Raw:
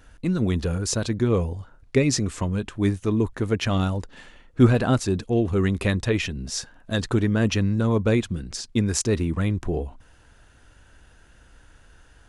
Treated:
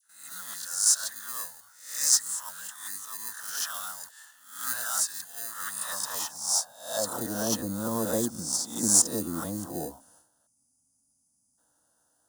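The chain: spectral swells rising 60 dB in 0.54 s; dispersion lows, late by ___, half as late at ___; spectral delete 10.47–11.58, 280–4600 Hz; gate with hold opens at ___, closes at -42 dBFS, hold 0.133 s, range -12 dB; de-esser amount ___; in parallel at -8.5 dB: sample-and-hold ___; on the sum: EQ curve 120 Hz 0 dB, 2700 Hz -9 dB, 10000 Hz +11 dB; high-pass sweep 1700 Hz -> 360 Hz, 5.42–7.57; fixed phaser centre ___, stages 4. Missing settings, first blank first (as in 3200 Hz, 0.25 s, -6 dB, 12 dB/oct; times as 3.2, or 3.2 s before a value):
78 ms, 1200 Hz, -39 dBFS, 30%, 20×, 960 Hz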